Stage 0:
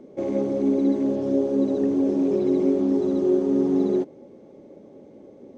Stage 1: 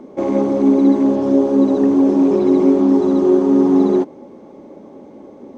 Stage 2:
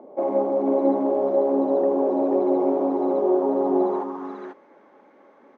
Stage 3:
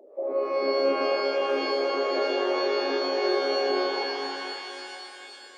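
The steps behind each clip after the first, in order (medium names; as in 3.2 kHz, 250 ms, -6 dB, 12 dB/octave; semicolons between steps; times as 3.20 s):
graphic EQ 125/250/500/1000 Hz -5/+3/-4/+10 dB; trim +7.5 dB
on a send: delay 490 ms -4.5 dB; on the sum: band-pass sweep 680 Hz -> 1.6 kHz, 3.75–4.42 s; trim +2 dB
resonances exaggerated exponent 2; pitch-shifted reverb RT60 2.8 s, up +12 st, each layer -2 dB, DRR 3.5 dB; trim -7 dB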